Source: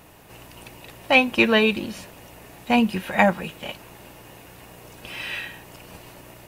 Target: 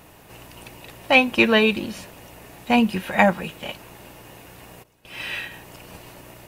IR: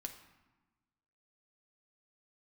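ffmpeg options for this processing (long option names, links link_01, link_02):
-filter_complex "[0:a]asplit=3[link_01][link_02][link_03];[link_01]afade=type=out:start_time=4.82:duration=0.02[link_04];[link_02]agate=range=-33dB:threshold=-32dB:ratio=3:detection=peak,afade=type=in:start_time=4.82:duration=0.02,afade=type=out:start_time=5.5:duration=0.02[link_05];[link_03]afade=type=in:start_time=5.5:duration=0.02[link_06];[link_04][link_05][link_06]amix=inputs=3:normalize=0,volume=1dB"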